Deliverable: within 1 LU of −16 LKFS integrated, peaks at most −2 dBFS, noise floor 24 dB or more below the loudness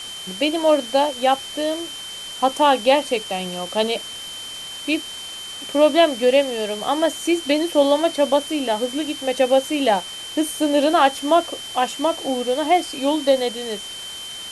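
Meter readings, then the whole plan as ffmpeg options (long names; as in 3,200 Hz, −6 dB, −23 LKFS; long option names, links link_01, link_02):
interfering tone 3,100 Hz; level of the tone −32 dBFS; background noise floor −34 dBFS; target noise floor −45 dBFS; integrated loudness −20.5 LKFS; sample peak −3.0 dBFS; target loudness −16.0 LKFS
→ -af "bandreject=frequency=3100:width=30"
-af "afftdn=noise_reduction=11:noise_floor=-34"
-af "volume=4.5dB,alimiter=limit=-2dB:level=0:latency=1"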